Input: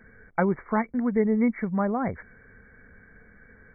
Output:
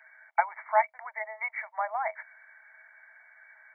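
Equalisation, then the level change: rippled Chebyshev high-pass 620 Hz, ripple 9 dB; +7.0 dB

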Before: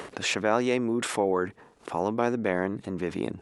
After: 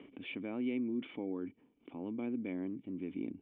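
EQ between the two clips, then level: cascade formant filter i; peaking EQ 1.1 kHz +11 dB 2.2 oct; -5.0 dB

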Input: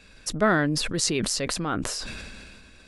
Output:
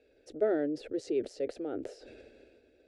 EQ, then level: band-pass filter 430 Hz, Q 1.5; static phaser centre 440 Hz, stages 4; 0.0 dB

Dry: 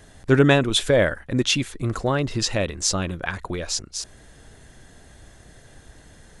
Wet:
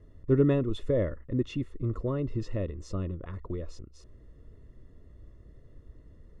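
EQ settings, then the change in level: boxcar filter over 56 samples; peaking EQ 180 Hz -7.5 dB 1.5 oct; 0.0 dB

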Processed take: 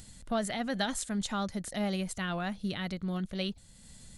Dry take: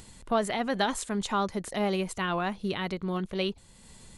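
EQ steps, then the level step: fifteen-band graphic EQ 400 Hz -10 dB, 1 kHz -11 dB, 2.5 kHz -5 dB; 0.0 dB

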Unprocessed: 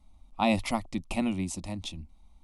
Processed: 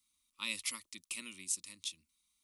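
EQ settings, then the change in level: Butterworth band-stop 730 Hz, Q 1.2; differentiator; +3.5 dB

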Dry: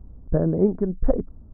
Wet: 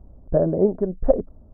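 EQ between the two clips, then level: peaking EQ 590 Hz +12 dB 1.1 oct; band-stop 480 Hz, Q 12; -3.5 dB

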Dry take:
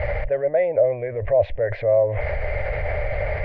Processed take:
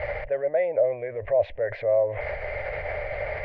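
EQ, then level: bass shelf 220 Hz -11 dB; -2.5 dB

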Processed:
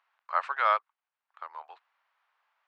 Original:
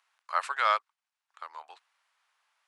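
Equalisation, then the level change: high-pass 450 Hz 12 dB/octave; tape spacing loss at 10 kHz 33 dB; +5.0 dB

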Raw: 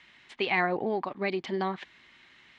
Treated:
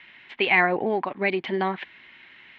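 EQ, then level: resonant low-pass 2.6 kHz, resonance Q 1.5; bass shelf 98 Hz -6.5 dB; band-stop 1.2 kHz, Q 12; +5.0 dB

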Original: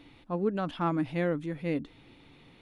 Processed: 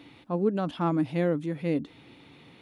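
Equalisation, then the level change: high-pass 98 Hz; dynamic bell 1.8 kHz, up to -6 dB, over -45 dBFS, Q 0.71; +4.0 dB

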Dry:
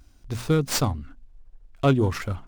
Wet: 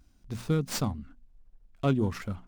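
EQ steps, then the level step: peaking EQ 200 Hz +9.5 dB 0.54 oct; -8.0 dB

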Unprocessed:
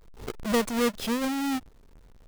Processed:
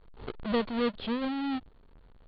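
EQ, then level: dynamic bell 1.3 kHz, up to -4 dB, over -41 dBFS, Q 0.72; rippled Chebyshev low-pass 4.5 kHz, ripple 3 dB; distance through air 81 m; 0.0 dB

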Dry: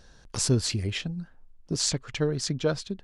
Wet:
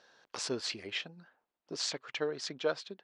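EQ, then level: band-pass 490–4100 Hz; -2.0 dB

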